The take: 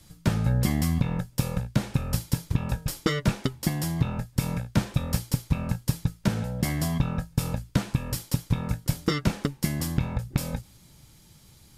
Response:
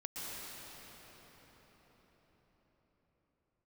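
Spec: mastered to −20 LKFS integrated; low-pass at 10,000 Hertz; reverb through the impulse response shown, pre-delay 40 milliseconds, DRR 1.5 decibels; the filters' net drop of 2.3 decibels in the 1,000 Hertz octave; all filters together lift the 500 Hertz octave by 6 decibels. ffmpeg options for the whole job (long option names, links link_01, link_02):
-filter_complex "[0:a]lowpass=10000,equalizer=frequency=500:width_type=o:gain=8.5,equalizer=frequency=1000:width_type=o:gain=-6,asplit=2[link_01][link_02];[1:a]atrim=start_sample=2205,adelay=40[link_03];[link_02][link_03]afir=irnorm=-1:irlink=0,volume=-3dB[link_04];[link_01][link_04]amix=inputs=2:normalize=0,volume=4.5dB"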